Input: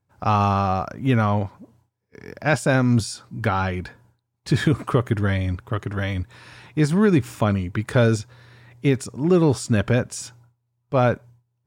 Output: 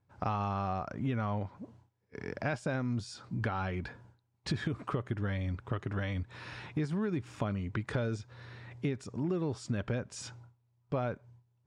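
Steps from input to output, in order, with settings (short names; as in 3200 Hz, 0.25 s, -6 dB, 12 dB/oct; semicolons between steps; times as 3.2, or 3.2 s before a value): compressor 5:1, threshold -32 dBFS, peak gain reduction 17 dB; air absorption 80 m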